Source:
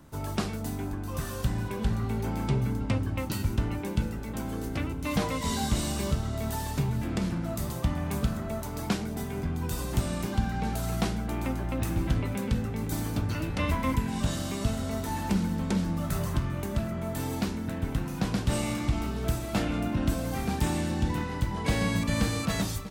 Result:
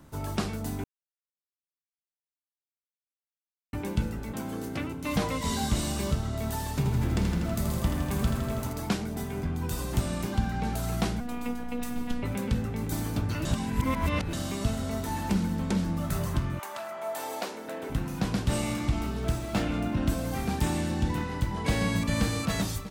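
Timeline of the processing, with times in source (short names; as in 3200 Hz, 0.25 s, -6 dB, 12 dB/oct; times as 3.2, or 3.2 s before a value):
0.84–3.73 mute
4.32–5.09 HPF 120 Hz
6.76–8.73 lo-fi delay 81 ms, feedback 80%, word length 9-bit, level -6 dB
11.2–12.23 robotiser 242 Hz
13.45–14.33 reverse
16.58–17.89 resonant high-pass 960 Hz -> 430 Hz, resonance Q 2
19.2–20.08 median filter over 3 samples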